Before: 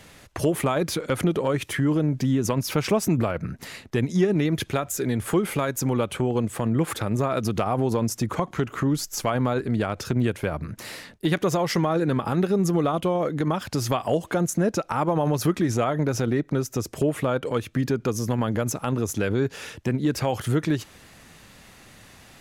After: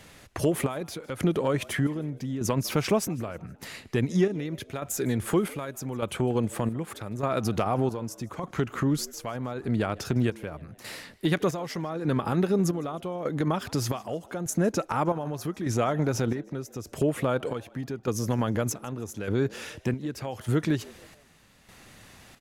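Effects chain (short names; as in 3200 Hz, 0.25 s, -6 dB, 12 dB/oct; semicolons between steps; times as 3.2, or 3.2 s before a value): chopper 0.83 Hz, depth 60%, duty 55%; on a send: frequency-shifting echo 0.156 s, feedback 42%, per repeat +94 Hz, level -23 dB; on the sum: gain -2 dB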